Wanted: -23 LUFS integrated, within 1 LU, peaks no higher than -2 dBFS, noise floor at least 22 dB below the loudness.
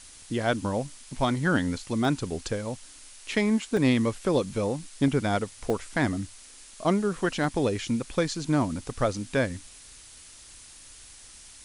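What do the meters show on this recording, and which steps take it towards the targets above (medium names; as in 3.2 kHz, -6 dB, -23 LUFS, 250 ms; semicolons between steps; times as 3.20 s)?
dropouts 5; longest dropout 1.4 ms; noise floor -49 dBFS; noise floor target -50 dBFS; loudness -27.5 LUFS; peak level -10.5 dBFS; loudness target -23.0 LUFS
-> interpolate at 2.05/3.77/5.08/5.70/7.44 s, 1.4 ms; noise reduction 6 dB, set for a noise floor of -49 dBFS; trim +4.5 dB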